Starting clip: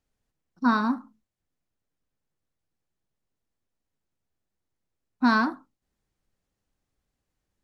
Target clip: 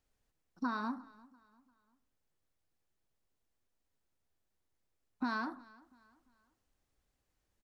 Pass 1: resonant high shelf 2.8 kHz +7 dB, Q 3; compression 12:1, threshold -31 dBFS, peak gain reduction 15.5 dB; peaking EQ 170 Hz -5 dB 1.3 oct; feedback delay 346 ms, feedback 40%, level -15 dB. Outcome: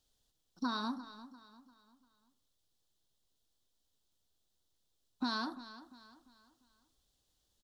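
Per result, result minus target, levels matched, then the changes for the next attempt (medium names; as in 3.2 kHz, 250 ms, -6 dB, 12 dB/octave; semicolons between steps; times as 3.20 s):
4 kHz band +12.0 dB; echo-to-direct +8 dB
remove: resonant high shelf 2.8 kHz +7 dB, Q 3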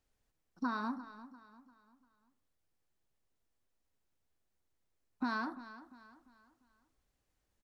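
echo-to-direct +8 dB
change: feedback delay 346 ms, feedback 40%, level -23 dB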